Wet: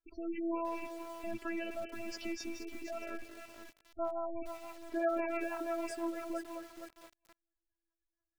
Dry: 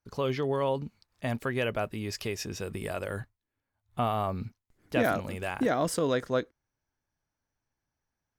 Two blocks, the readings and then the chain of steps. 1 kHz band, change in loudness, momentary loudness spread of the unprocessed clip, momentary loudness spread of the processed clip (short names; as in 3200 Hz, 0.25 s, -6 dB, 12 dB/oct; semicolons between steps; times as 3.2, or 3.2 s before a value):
-8.0 dB, -8.5 dB, 11 LU, 15 LU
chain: rattling part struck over -43 dBFS, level -29 dBFS; thinning echo 0.226 s, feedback 25%, high-pass 340 Hz, level -11 dB; limiter -25 dBFS, peak gain reduction 10.5 dB; dynamic EQ 820 Hz, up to +6 dB, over -47 dBFS, Q 3; spectral gain 4.68–5.47, 240–2600 Hz +6 dB; robotiser 334 Hz; rotary speaker horn 1.2 Hz, later 6 Hz, at 2.95; spectral gate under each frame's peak -15 dB strong; high shelf 6800 Hz -10 dB; lo-fi delay 0.472 s, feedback 35%, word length 8-bit, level -7.5 dB